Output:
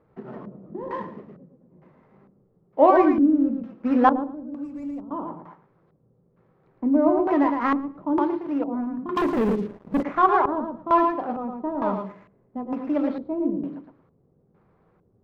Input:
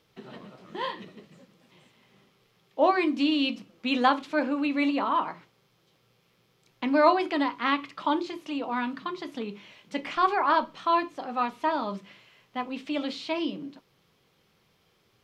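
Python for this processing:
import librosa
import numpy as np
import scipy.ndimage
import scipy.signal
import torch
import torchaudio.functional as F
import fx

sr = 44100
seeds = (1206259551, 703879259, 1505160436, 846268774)

y = scipy.ndimage.median_filter(x, 15, mode='constant')
y = fx.curve_eq(y, sr, hz=(120.0, 350.0, 1600.0, 3600.0, 5300.0, 7600.0), db=(0, -16, -24, -18, -12, 3), at=(4.29, 5.11))
y = fx.echo_feedback(y, sr, ms=112, feedback_pct=19, wet_db=-5.0)
y = fx.filter_lfo_lowpass(y, sr, shape='square', hz=1.1, low_hz=420.0, high_hz=1500.0, q=0.72)
y = fx.leveller(y, sr, passes=3, at=(9.16, 10.03))
y = fx.high_shelf(y, sr, hz=3800.0, db=7.0, at=(11.96, 12.64))
y = F.gain(torch.from_numpy(y), 6.5).numpy()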